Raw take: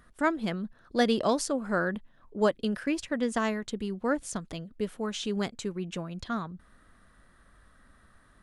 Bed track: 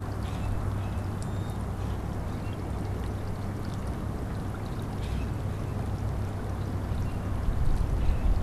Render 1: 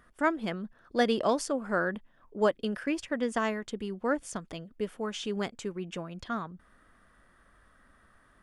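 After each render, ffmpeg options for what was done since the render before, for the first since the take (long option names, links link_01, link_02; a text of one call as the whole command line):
ffmpeg -i in.wav -af "bass=frequency=250:gain=-5,treble=frequency=4000:gain=-4,bandreject=frequency=4000:width=9.4" out.wav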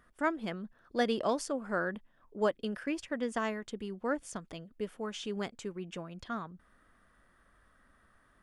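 ffmpeg -i in.wav -af "volume=-4dB" out.wav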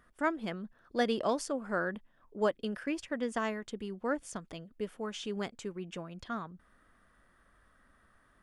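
ffmpeg -i in.wav -af anull out.wav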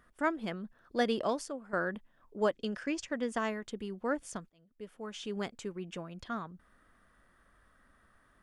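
ffmpeg -i in.wav -filter_complex "[0:a]asettb=1/sr,asplit=3[link_01][link_02][link_03];[link_01]atrim=end=2.534[link_04];[link_02]atrim=start=2.53:end=3.18,asetpts=PTS-STARTPTS,afade=type=in:duration=0.004:curve=qsin,afade=type=out:start_time=0.646:duration=0.004:curve=qsin,lowpass=frequency=6700:width_type=q:width=2.4[link_05];[link_03]atrim=start=3.176[link_06];[link_04][link_05]acrossfade=duration=0.004:curve1=hsin:curve2=qsin[link_07];[link_07][link_06]acrossfade=duration=0.004:curve1=qsin:curve2=hsin,asplit=3[link_08][link_09][link_10];[link_08]atrim=end=1.73,asetpts=PTS-STARTPTS,afade=type=out:start_time=1.19:duration=0.54:silence=0.251189[link_11];[link_09]atrim=start=1.73:end=4.5,asetpts=PTS-STARTPTS,afade=type=in:duration=0.004:curve=hsin:silence=0.251189,afade=type=out:start_time=2.766:duration=0.004:curve=hsin[link_12];[link_10]atrim=start=4.5,asetpts=PTS-STARTPTS,afade=type=in:duration=0.9[link_13];[link_11][link_12][link_13]concat=n=3:v=0:a=1" out.wav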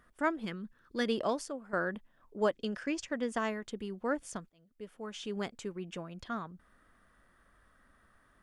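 ffmpeg -i in.wav -filter_complex "[0:a]asettb=1/sr,asplit=3[link_01][link_02][link_03];[link_01]atrim=end=0.454[link_04];[link_02]atrim=start=0.45:end=1.06,asetpts=PTS-STARTPTS,afade=type=in:duration=0.004:curve=qsin,afade=type=out:start_time=0.606:duration=0.004:curve=qsin,equalizer=frequency=690:width=2.3:gain=-14.5[link_05];[link_03]atrim=start=1.056[link_06];[link_04][link_05]acrossfade=duration=0.004:curve1=hsin:curve2=qsin[link_07];[link_07][link_06]acrossfade=duration=0.004:curve1=qsin:curve2=hsin" out.wav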